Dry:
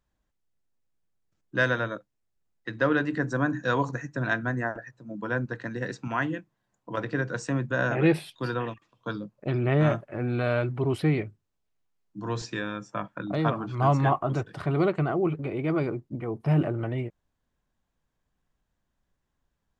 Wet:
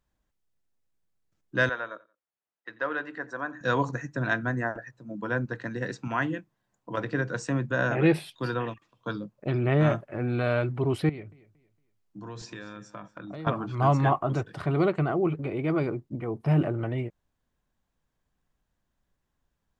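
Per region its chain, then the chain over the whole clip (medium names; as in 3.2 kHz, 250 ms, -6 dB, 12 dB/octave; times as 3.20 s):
1.69–3.61 s: high-pass 990 Hz + tilt EQ -4.5 dB/octave + feedback delay 88 ms, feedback 28%, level -21.5 dB
11.09–13.47 s: compression 3:1, threshold -39 dBFS + feedback delay 230 ms, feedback 31%, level -18 dB
whole clip: none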